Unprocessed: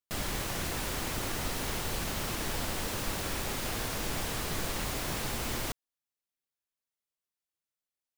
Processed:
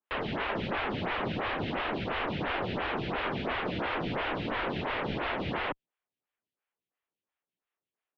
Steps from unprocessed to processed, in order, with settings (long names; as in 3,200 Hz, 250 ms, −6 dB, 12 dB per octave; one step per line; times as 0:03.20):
single-sideband voice off tune −150 Hz 220–3,400 Hz
phaser with staggered stages 2.9 Hz
level +9 dB